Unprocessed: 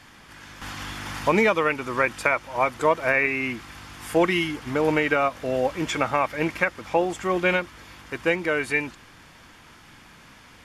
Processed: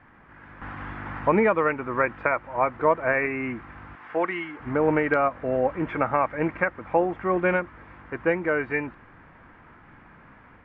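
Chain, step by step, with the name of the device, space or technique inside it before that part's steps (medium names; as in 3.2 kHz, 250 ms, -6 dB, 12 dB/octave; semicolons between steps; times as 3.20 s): 3.95–4.60 s: high-pass 830 Hz 6 dB/octave; action camera in a waterproof case (low-pass 1.9 kHz 24 dB/octave; level rider gain up to 3 dB; trim -2.5 dB; AAC 128 kbps 48 kHz)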